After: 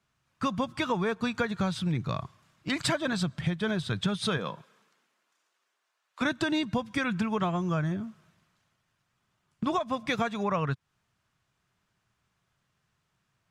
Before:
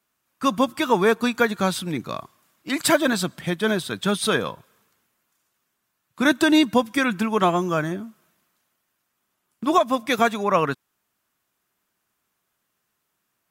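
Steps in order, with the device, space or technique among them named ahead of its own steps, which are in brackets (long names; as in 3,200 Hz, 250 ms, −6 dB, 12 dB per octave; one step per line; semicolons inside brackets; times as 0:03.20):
0:04.37–0:06.21: high-pass filter 170 Hz → 500 Hz 24 dB per octave
jukebox (low-pass filter 6,000 Hz 12 dB per octave; low shelf with overshoot 190 Hz +10 dB, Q 1.5; downward compressor 5 to 1, threshold −26 dBFS, peak gain reduction 12.5 dB)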